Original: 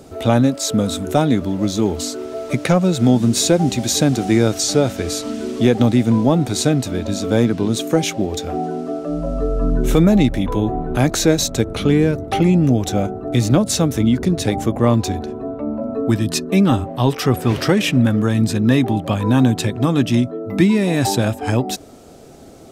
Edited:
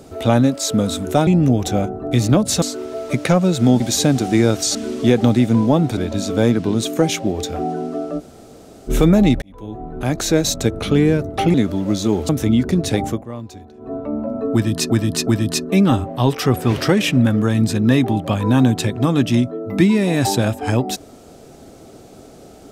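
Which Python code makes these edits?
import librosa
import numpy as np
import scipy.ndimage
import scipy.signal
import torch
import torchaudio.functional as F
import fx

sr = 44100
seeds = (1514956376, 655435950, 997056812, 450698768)

y = fx.edit(x, sr, fx.swap(start_s=1.27, length_s=0.75, other_s=12.48, other_length_s=1.35),
    fx.cut(start_s=3.2, length_s=0.57),
    fx.cut(start_s=4.72, length_s=0.6),
    fx.cut(start_s=6.54, length_s=0.37),
    fx.room_tone_fill(start_s=9.13, length_s=0.7, crossfade_s=0.04),
    fx.fade_in_span(start_s=10.36, length_s=1.12),
    fx.fade_down_up(start_s=14.61, length_s=0.87, db=-16.0, fade_s=0.17),
    fx.repeat(start_s=16.07, length_s=0.37, count=3), tone=tone)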